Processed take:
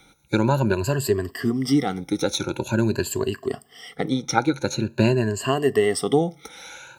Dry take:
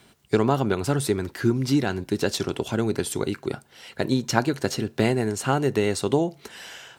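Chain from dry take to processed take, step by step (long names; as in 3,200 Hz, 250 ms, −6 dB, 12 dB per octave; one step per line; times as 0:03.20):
rippled gain that drifts along the octave scale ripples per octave 1.4, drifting +0.46 Hz, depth 20 dB
0:03.95–0:05.42: high-shelf EQ 9,700 Hz −11 dB
level −2.5 dB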